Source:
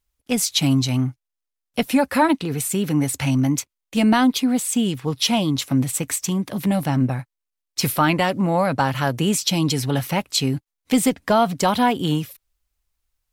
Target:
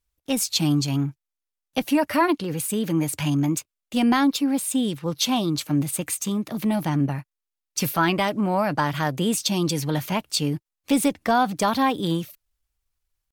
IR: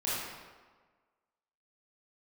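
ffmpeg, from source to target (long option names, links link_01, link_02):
-af "asetrate=48091,aresample=44100,atempo=0.917004,volume=-3dB"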